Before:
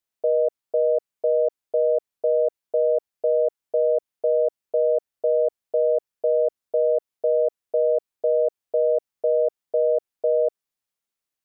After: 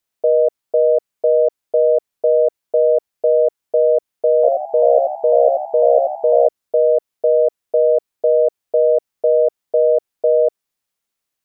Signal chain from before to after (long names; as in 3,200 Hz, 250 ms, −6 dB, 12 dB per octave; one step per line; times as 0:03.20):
0:04.35–0:06.47: echo with shifted repeats 84 ms, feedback 39%, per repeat +64 Hz, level −3.5 dB
level +6.5 dB